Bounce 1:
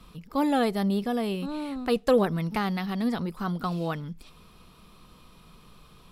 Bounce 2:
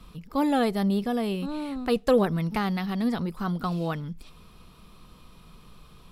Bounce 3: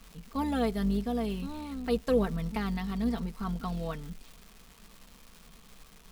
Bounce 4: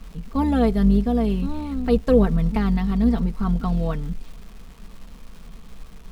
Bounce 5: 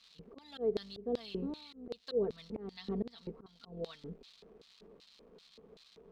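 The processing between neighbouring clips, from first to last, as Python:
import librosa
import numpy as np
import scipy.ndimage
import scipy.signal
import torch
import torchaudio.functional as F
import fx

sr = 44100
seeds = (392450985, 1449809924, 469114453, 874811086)

y1 = fx.low_shelf(x, sr, hz=130.0, db=4.5)
y2 = fx.octave_divider(y1, sr, octaves=2, level_db=-5.0)
y2 = y2 + 0.64 * np.pad(y2, (int(4.4 * sr / 1000.0), 0))[:len(y2)]
y2 = fx.dmg_crackle(y2, sr, seeds[0], per_s=570.0, level_db=-35.0)
y2 = y2 * librosa.db_to_amplitude(-8.0)
y3 = fx.tilt_eq(y2, sr, slope=-2.0)
y3 = y3 * librosa.db_to_amplitude(6.5)
y4 = np.repeat(scipy.signal.resample_poly(y3, 1, 2), 2)[:len(y3)]
y4 = fx.filter_lfo_bandpass(y4, sr, shape='square', hz=2.6, low_hz=430.0, high_hz=4100.0, q=4.3)
y4 = fx.auto_swell(y4, sr, attack_ms=281.0)
y4 = y4 * librosa.db_to_amplitude(3.0)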